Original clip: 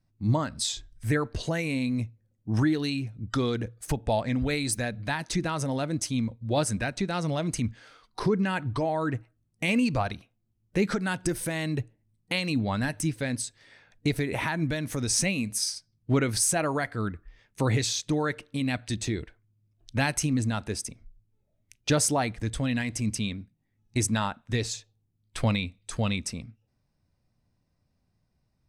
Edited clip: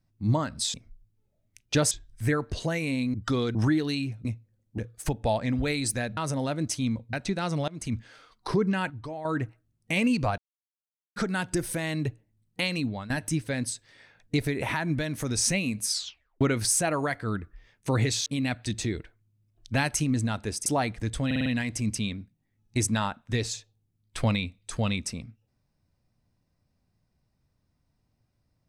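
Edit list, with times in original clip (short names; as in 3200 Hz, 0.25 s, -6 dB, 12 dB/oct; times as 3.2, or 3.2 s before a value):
1.97–2.5 swap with 3.2–3.61
5–5.49 cut
6.45–6.85 cut
7.4–7.7 fade in, from -22.5 dB
8.62–8.97 gain -9.5 dB
10.1–10.88 mute
12.45–12.82 fade out, to -15.5 dB
15.63 tape stop 0.50 s
17.98–18.49 cut
20.89–22.06 move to 0.74
22.66 stutter 0.05 s, 5 plays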